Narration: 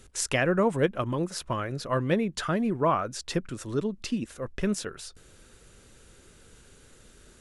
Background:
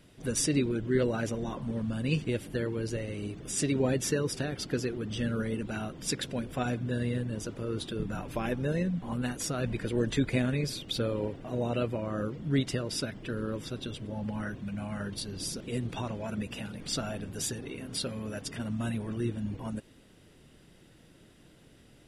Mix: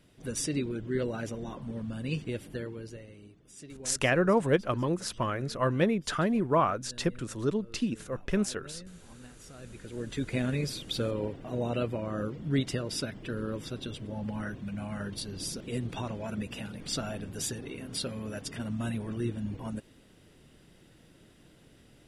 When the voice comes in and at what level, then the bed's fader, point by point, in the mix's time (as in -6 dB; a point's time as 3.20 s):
3.70 s, -0.5 dB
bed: 2.52 s -4 dB
3.43 s -18.5 dB
9.45 s -18.5 dB
10.50 s -0.5 dB